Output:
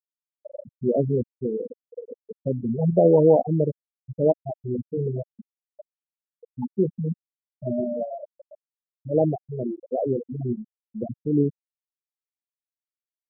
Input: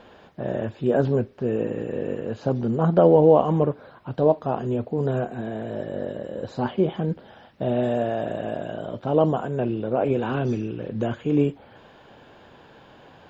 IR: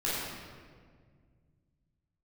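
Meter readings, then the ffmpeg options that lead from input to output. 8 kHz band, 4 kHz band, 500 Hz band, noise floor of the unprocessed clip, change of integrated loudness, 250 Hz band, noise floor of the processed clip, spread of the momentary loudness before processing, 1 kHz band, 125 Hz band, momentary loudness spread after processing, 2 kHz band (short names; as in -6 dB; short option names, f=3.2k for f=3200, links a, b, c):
n/a, under -40 dB, -2.0 dB, -51 dBFS, -1.0 dB, -2.0 dB, under -85 dBFS, 13 LU, -7.5 dB, -1.5 dB, 22 LU, under -40 dB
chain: -filter_complex "[0:a]acrossover=split=2500[a][b];[b]acompressor=threshold=-59dB:ratio=4:attack=1:release=60[c];[a][c]amix=inputs=2:normalize=0,highshelf=f=2.3k:t=q:w=3:g=12.5,afftfilt=real='re*gte(hypot(re,im),0.355)':imag='im*gte(hypot(re,im),0.355)':win_size=1024:overlap=0.75"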